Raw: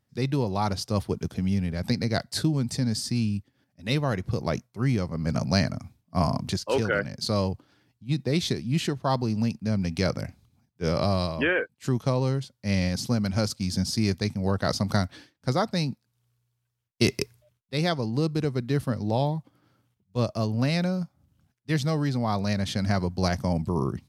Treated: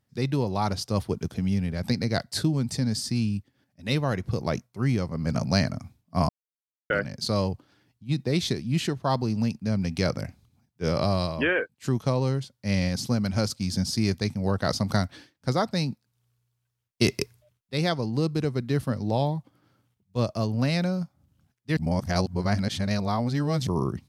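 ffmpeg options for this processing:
-filter_complex "[0:a]asplit=5[a][b][c][d][e];[a]atrim=end=6.29,asetpts=PTS-STARTPTS,afade=t=out:st=6.286:d=0.004:c=hsin[f];[b]atrim=start=6.29:end=6.9,asetpts=PTS-STARTPTS,volume=0[g];[c]atrim=start=6.9:end=21.772,asetpts=PTS-STARTPTS,afade=t=in:d=0.004:c=hsin[h];[d]atrim=start=21.768:end=23.672,asetpts=PTS-STARTPTS,areverse[i];[e]atrim=start=23.668[j];[f][g][h]concat=n=3:v=0:a=1[k];[k][i]acrossfade=d=0.004:c1=hsin:c2=hsin[l];[l][j]acrossfade=d=0.004:c1=hsin:c2=hsin"

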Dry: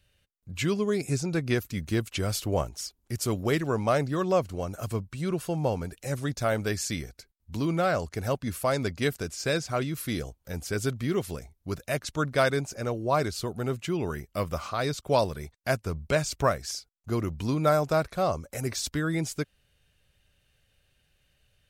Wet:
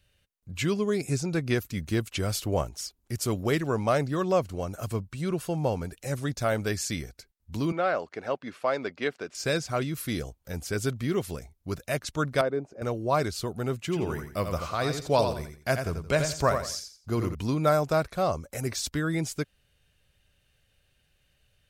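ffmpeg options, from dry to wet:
-filter_complex "[0:a]asettb=1/sr,asplit=3[a][b][c];[a]atrim=end=7.724[d];[b]atrim=start=7.72:end=9.35,asetpts=PTS-STARTPTS,afade=t=in:d=0.004:c=qsin,afade=t=out:st=1.626:d=0.004:c=qsin,highpass=320,lowpass=3.1k[e];[c]atrim=start=9.346[f];[d][e]acrossfade=d=0.004:c1=hsin:c2=qsin[g];[g][f]acrossfade=d=0.004:c1=qsin:c2=hsin,asettb=1/sr,asplit=3[h][i][j];[h]atrim=end=12.414[k];[i]atrim=start=12.41:end=12.82,asetpts=PTS-STARTPTS,afade=t=in:d=0.004:c=qsin,afade=t=out:st=0.406:d=0.004:c=qsin,bandpass=f=400:t=q:w=1[l];[j]atrim=start=12.816[m];[k][l]acrossfade=d=0.004:c1=hsin:c2=qsin[n];[n][m]acrossfade=d=0.004:c1=qsin:c2=hsin,asettb=1/sr,asplit=3[o][p][q];[o]atrim=end=13.784[r];[p]atrim=start=13.78:end=17.35,asetpts=PTS-STARTPTS,afade=t=in:d=0.004:c=qsin,afade=t=out:st=3.566:d=0.004:c=qsin,aecho=1:1:86|172|258:0.447|0.121|0.0326,atrim=end_sample=157437[s];[q]atrim=start=17.346[t];[r][s]acrossfade=d=0.004:c1=hsin:c2=qsin[u];[u][t]acrossfade=d=0.004:c1=qsin:c2=hsin"

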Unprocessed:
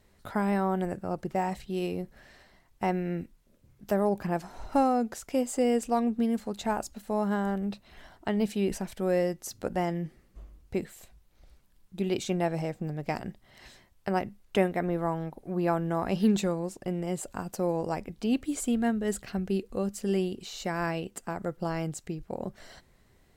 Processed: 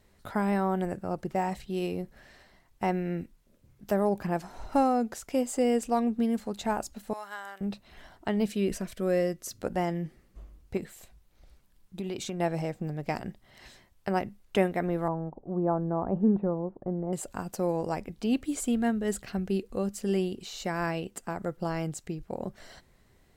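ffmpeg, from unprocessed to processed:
-filter_complex "[0:a]asettb=1/sr,asplit=3[a][b][c];[a]atrim=end=7.134[d];[b]atrim=start=7.13:end=7.61,asetpts=PTS-STARTPTS,afade=t=in:d=0.004:c=qsin,afade=t=out:st=0.476:d=0.004:c=qsin,highpass=1.3k[e];[c]atrim=start=7.606[f];[d][e]acrossfade=d=0.004:c1=hsin:c2=qsin[g];[g][f]acrossfade=d=0.004:c1=qsin:c2=hsin,asettb=1/sr,asplit=3[h][i][j];[h]atrim=end=8.484[k];[i]atrim=start=8.48:end=9.62,asetpts=PTS-STARTPTS,afade=t=in:d=0.004:c=qsin,afade=t=out:st=1.136:d=0.004:c=qsin,asuperstop=centerf=840:order=4:qfactor=3.4[l];[j]atrim=start=9.616[m];[k][l]acrossfade=d=0.004:c1=hsin:c2=qsin[n];[n][m]acrossfade=d=0.004:c1=qsin:c2=hsin,asettb=1/sr,asplit=3[o][p][q];[o]atrim=end=10.774[r];[p]atrim=start=10.77:end=12.4,asetpts=PTS-STARTPTS,afade=t=in:d=0.004:c=qsin,afade=t=out:st=1.626:d=0.004:c=qsin,acompressor=threshold=-30dB:ratio=6:attack=3.2:release=140:knee=1:detection=peak[s];[q]atrim=start=12.396[t];[r][s]acrossfade=d=0.004:c1=hsin:c2=qsin[u];[u][t]acrossfade=d=0.004:c1=qsin:c2=hsin,asettb=1/sr,asplit=3[v][w][x];[v]atrim=end=15.084[y];[w]atrim=start=15.08:end=17.13,asetpts=PTS-STARTPTS,afade=t=in:d=0.004:c=qsin,afade=t=out:st=2.046:d=0.004:c=qsin,lowpass=f=1.1k:w=0.5412,lowpass=f=1.1k:w=1.3066[z];[x]atrim=start=17.126[aa];[y][z]acrossfade=d=0.004:c1=hsin:c2=qsin[ab];[ab][aa]acrossfade=d=0.004:c1=qsin:c2=hsin"

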